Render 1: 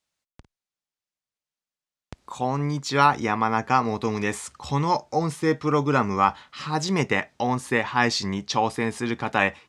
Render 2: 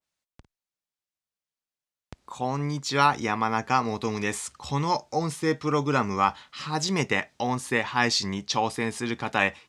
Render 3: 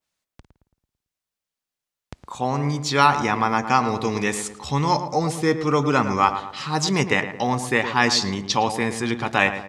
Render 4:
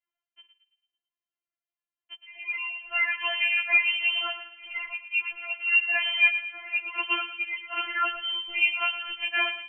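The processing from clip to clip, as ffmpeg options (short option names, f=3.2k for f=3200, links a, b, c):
-af "adynamicequalizer=threshold=0.0158:dfrequency=2400:dqfactor=0.7:tfrequency=2400:tqfactor=0.7:attack=5:release=100:ratio=0.375:range=2.5:mode=boostabove:tftype=highshelf,volume=-3dB"
-filter_complex "[0:a]asplit=2[a][b];[b]adelay=111,lowpass=f=1.5k:p=1,volume=-9dB,asplit=2[c][d];[d]adelay=111,lowpass=f=1.5k:p=1,volume=0.49,asplit=2[e][f];[f]adelay=111,lowpass=f=1.5k:p=1,volume=0.49,asplit=2[g][h];[h]adelay=111,lowpass=f=1.5k:p=1,volume=0.49,asplit=2[i][j];[j]adelay=111,lowpass=f=1.5k:p=1,volume=0.49,asplit=2[k][l];[l]adelay=111,lowpass=f=1.5k:p=1,volume=0.49[m];[a][c][e][g][i][k][m]amix=inputs=7:normalize=0,volume=4.5dB"
-af "lowpass=f=2.7k:t=q:w=0.5098,lowpass=f=2.7k:t=q:w=0.6013,lowpass=f=2.7k:t=q:w=0.9,lowpass=f=2.7k:t=q:w=2.563,afreqshift=-3200,afftfilt=real='re*4*eq(mod(b,16),0)':imag='im*4*eq(mod(b,16),0)':win_size=2048:overlap=0.75,volume=-4.5dB"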